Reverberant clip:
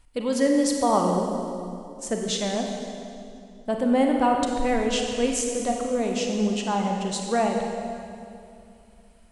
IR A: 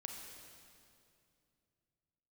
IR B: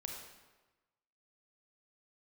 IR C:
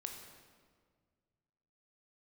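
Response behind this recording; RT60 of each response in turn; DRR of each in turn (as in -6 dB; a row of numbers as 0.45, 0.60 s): A; 2.5, 1.2, 1.8 s; 1.5, 0.5, 3.0 dB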